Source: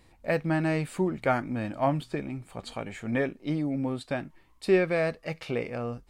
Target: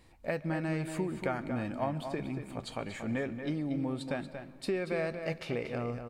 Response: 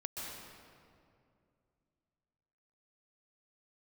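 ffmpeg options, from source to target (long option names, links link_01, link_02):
-filter_complex "[0:a]acompressor=threshold=-28dB:ratio=6,asplit=2[link_01][link_02];[link_02]adelay=233.2,volume=-8dB,highshelf=frequency=4000:gain=-5.25[link_03];[link_01][link_03]amix=inputs=2:normalize=0,asplit=2[link_04][link_05];[1:a]atrim=start_sample=2205[link_06];[link_05][link_06]afir=irnorm=-1:irlink=0,volume=-15.5dB[link_07];[link_04][link_07]amix=inputs=2:normalize=0,volume=-2.5dB"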